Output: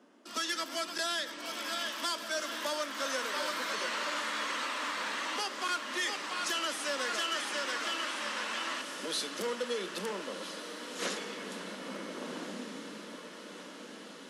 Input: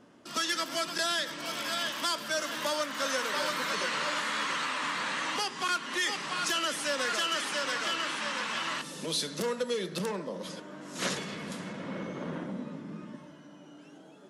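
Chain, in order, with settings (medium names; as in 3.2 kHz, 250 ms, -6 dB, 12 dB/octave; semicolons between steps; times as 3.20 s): steep high-pass 210 Hz 36 dB/octave; echo that smears into a reverb 1462 ms, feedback 67%, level -10.5 dB; trim -3.5 dB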